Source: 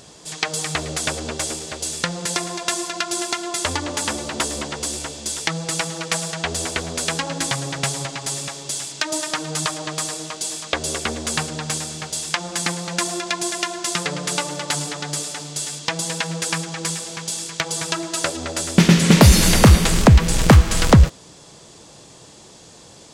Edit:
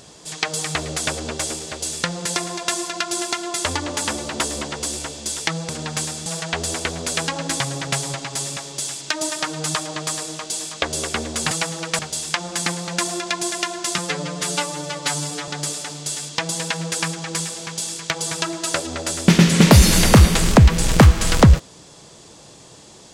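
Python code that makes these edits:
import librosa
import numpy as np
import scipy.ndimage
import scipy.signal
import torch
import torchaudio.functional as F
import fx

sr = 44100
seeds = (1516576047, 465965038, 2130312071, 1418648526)

y = fx.edit(x, sr, fx.swap(start_s=5.69, length_s=0.48, other_s=11.42, other_length_s=0.57),
    fx.stretch_span(start_s=13.98, length_s=1.0, factor=1.5), tone=tone)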